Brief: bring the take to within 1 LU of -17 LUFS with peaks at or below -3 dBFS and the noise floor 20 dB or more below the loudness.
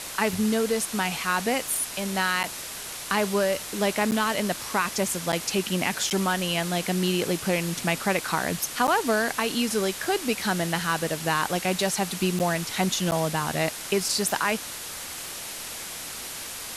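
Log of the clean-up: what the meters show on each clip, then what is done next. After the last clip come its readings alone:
dropouts 7; longest dropout 9.1 ms; noise floor -37 dBFS; noise floor target -46 dBFS; loudness -26.0 LUFS; peak -10.5 dBFS; loudness target -17.0 LUFS
-> interpolate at 2.43/4.11/5.32/6.1/8.87/12.39/13.11, 9.1 ms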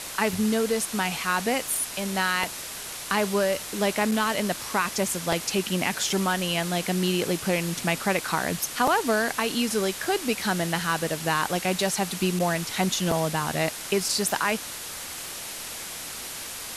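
dropouts 0; noise floor -37 dBFS; noise floor target -46 dBFS
-> noise print and reduce 9 dB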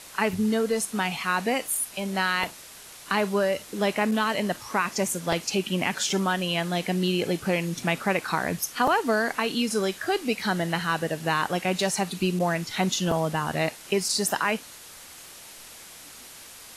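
noise floor -46 dBFS; loudness -26.0 LUFS; peak -10.5 dBFS; loudness target -17.0 LUFS
-> gain +9 dB; limiter -3 dBFS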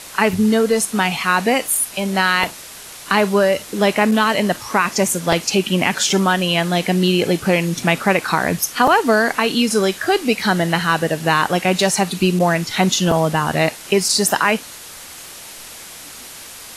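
loudness -17.0 LUFS; peak -3.0 dBFS; noise floor -37 dBFS

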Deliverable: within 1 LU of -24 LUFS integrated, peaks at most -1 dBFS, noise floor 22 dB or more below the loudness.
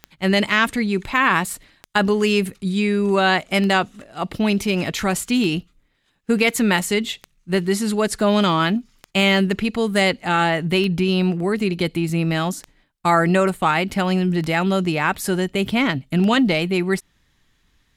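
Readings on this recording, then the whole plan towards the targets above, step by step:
clicks 10; loudness -20.0 LUFS; peak -3.5 dBFS; loudness target -24.0 LUFS
-> de-click; gain -4 dB

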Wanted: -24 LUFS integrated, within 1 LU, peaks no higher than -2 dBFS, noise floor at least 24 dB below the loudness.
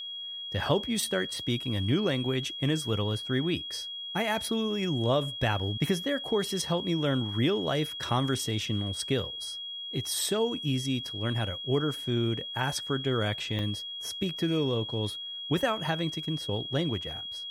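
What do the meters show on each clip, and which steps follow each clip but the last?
dropouts 1; longest dropout 1.5 ms; steady tone 3300 Hz; tone level -36 dBFS; loudness -29.5 LUFS; peak -11.0 dBFS; loudness target -24.0 LUFS
-> interpolate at 13.59, 1.5 ms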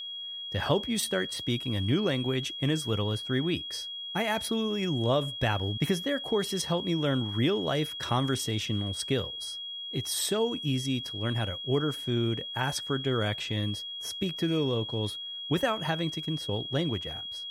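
dropouts 0; steady tone 3300 Hz; tone level -36 dBFS
-> notch 3300 Hz, Q 30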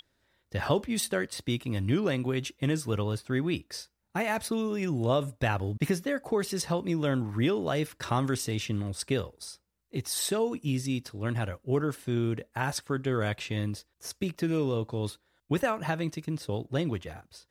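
steady tone none; loudness -30.5 LUFS; peak -11.5 dBFS; loudness target -24.0 LUFS
-> gain +6.5 dB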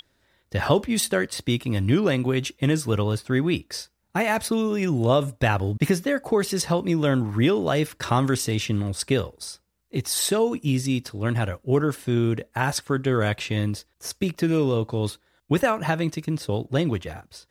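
loudness -24.0 LUFS; peak -5.0 dBFS; noise floor -69 dBFS

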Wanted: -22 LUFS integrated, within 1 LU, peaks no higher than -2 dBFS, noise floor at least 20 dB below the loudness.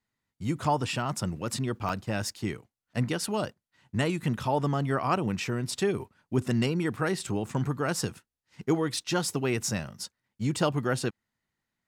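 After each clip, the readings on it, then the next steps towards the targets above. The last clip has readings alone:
dropouts 1; longest dropout 4.2 ms; loudness -30.0 LUFS; peak -13.0 dBFS; loudness target -22.0 LUFS
-> interpolate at 1.89, 4.2 ms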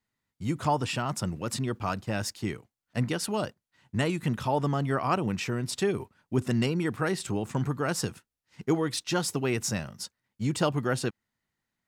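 dropouts 0; loudness -30.0 LUFS; peak -13.0 dBFS; loudness target -22.0 LUFS
-> gain +8 dB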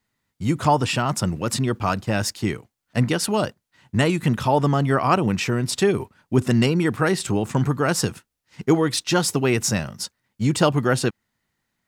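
loudness -22.0 LUFS; peak -5.0 dBFS; noise floor -79 dBFS

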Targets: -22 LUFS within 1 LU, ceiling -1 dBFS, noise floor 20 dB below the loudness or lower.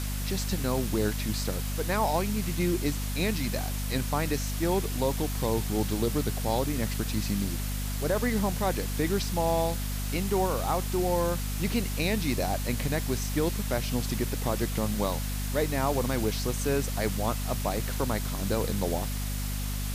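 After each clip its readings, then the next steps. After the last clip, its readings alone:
hum 50 Hz; harmonics up to 250 Hz; hum level -29 dBFS; noise floor -31 dBFS; noise floor target -49 dBFS; loudness -29.0 LUFS; peak -14.0 dBFS; loudness target -22.0 LUFS
-> notches 50/100/150/200/250 Hz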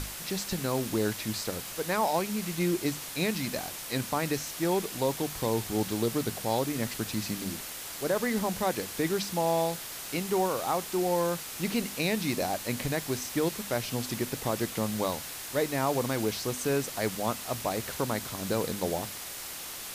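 hum none; noise floor -40 dBFS; noise floor target -51 dBFS
-> denoiser 11 dB, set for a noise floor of -40 dBFS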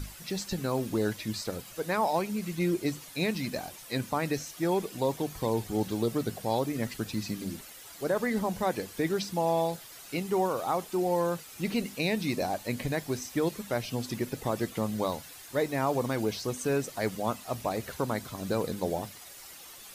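noise floor -48 dBFS; noise floor target -52 dBFS
-> denoiser 6 dB, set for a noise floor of -48 dBFS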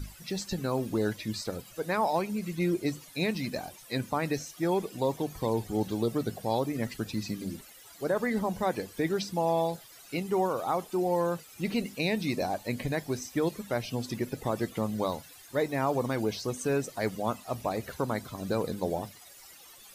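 noise floor -52 dBFS; loudness -31.5 LUFS; peak -16.5 dBFS; loudness target -22.0 LUFS
-> gain +9.5 dB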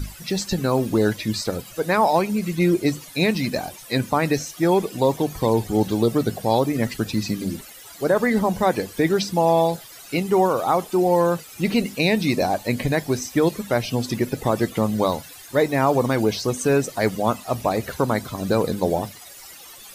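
loudness -22.0 LUFS; peak -7.0 dBFS; noise floor -43 dBFS

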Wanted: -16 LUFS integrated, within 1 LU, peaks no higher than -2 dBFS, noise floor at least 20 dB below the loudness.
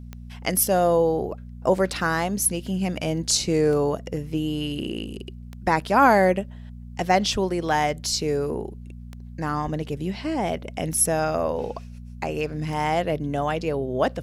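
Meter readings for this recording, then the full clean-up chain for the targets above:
clicks 8; hum 60 Hz; harmonics up to 240 Hz; hum level -37 dBFS; loudness -24.0 LUFS; peak -6.0 dBFS; loudness target -16.0 LUFS
-> de-click; de-hum 60 Hz, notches 4; gain +8 dB; limiter -2 dBFS

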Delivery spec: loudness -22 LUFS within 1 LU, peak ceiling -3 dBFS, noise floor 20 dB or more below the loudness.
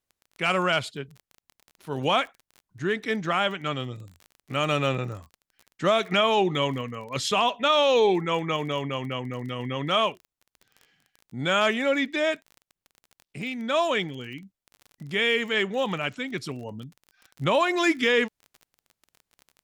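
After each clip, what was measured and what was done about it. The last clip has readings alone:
ticks 28/s; loudness -25.5 LUFS; peak -11.5 dBFS; loudness target -22.0 LUFS
-> de-click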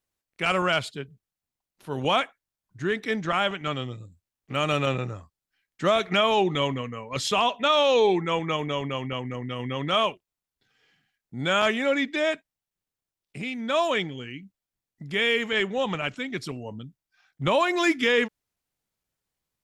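ticks 0/s; loudness -25.5 LUFS; peak -11.5 dBFS; loudness target -22.0 LUFS
-> gain +3.5 dB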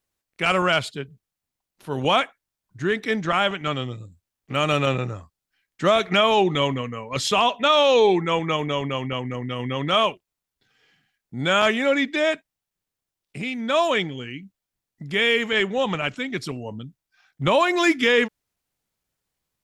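loudness -22.0 LUFS; peak -8.0 dBFS; noise floor -86 dBFS

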